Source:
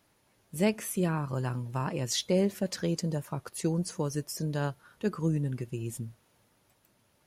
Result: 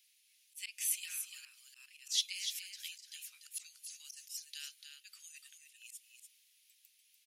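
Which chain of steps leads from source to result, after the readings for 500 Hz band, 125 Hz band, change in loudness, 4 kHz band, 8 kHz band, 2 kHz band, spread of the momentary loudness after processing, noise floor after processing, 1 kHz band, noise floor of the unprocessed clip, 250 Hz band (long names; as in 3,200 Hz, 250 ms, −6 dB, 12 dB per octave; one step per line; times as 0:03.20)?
below −40 dB, below −40 dB, −8.0 dB, −0.5 dB, −1.0 dB, −8.0 dB, 21 LU, −71 dBFS, below −35 dB, −69 dBFS, below −40 dB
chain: Butterworth high-pass 2,400 Hz 36 dB per octave
volume swells 152 ms
on a send: single-tap delay 293 ms −7 dB
on the sum: level +3.5 dB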